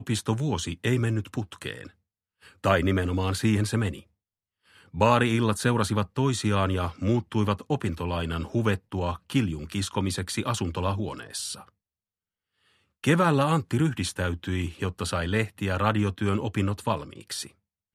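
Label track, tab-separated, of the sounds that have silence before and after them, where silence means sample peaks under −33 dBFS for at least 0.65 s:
2.640000	3.980000	sound
4.950000	11.540000	sound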